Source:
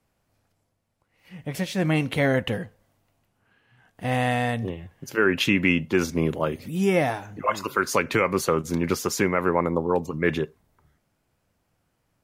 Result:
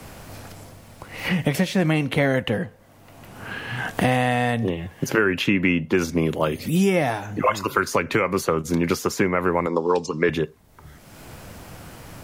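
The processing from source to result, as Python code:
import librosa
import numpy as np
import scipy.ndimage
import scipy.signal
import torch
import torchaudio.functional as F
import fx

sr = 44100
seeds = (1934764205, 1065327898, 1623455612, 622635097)

y = fx.cabinet(x, sr, low_hz=240.0, low_slope=12, high_hz=7400.0, hz=(440.0, 660.0, 990.0, 2100.0, 5100.0), db=(4, -4, 4, -4, 8), at=(9.66, 10.29))
y = fx.band_squash(y, sr, depth_pct=100)
y = F.gain(torch.from_numpy(y), 1.5).numpy()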